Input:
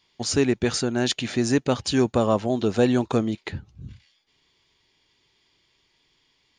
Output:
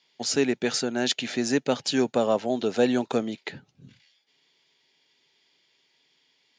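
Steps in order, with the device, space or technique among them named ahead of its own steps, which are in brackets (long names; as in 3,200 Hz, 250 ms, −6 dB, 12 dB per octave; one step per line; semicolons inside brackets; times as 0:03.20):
television speaker (loudspeaker in its box 170–7,600 Hz, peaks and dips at 200 Hz −7 dB, 330 Hz −6 dB, 1,100 Hz −7 dB)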